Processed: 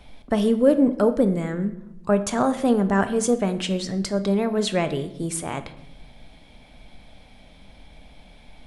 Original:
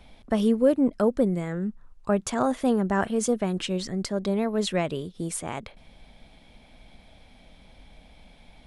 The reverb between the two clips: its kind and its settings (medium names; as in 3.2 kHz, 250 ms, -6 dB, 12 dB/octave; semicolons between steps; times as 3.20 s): simulated room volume 260 m³, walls mixed, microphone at 0.37 m; trim +3 dB